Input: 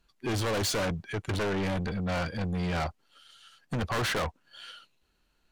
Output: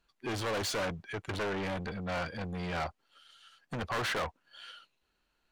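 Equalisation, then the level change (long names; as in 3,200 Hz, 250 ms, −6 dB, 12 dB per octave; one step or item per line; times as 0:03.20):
low-shelf EQ 340 Hz −8 dB
high-shelf EQ 4,300 Hz −6.5 dB
−1.0 dB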